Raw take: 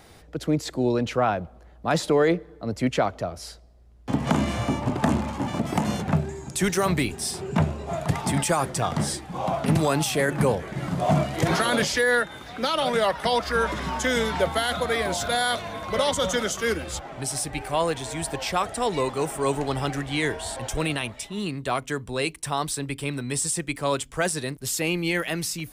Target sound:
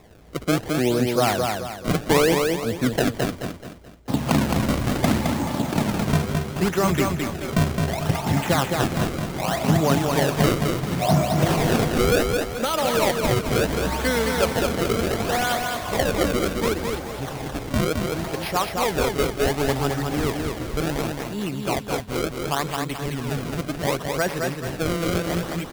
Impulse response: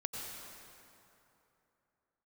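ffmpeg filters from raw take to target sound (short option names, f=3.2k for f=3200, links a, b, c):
-af "highshelf=f=5.6k:g=-11,acrusher=samples=29:mix=1:aa=0.000001:lfo=1:lforange=46.4:lforate=0.69,aecho=1:1:215|430|645|860|1075:0.631|0.246|0.096|0.0374|0.0146,volume=1.5dB"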